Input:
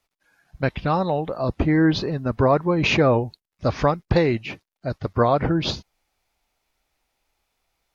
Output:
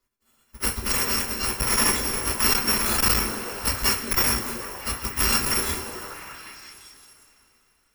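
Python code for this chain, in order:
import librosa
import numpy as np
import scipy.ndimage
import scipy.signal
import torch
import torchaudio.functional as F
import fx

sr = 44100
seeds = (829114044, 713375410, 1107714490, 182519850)

p1 = fx.bit_reversed(x, sr, seeds[0], block=256)
p2 = fx.sample_hold(p1, sr, seeds[1], rate_hz=4000.0, jitter_pct=20)
p3 = p1 + (p2 * librosa.db_to_amplitude(-3.5))
p4 = fx.peak_eq(p3, sr, hz=630.0, db=-7.0, octaves=0.56)
p5 = p4 + fx.echo_stepped(p4, sr, ms=191, hz=280.0, octaves=0.7, feedback_pct=70, wet_db=-3.5, dry=0)
p6 = fx.rev_double_slope(p5, sr, seeds[2], early_s=0.21, late_s=3.4, knee_db=-21, drr_db=-4.5)
p7 = fx.transformer_sat(p6, sr, knee_hz=310.0)
y = p7 * librosa.db_to_amplitude(-9.0)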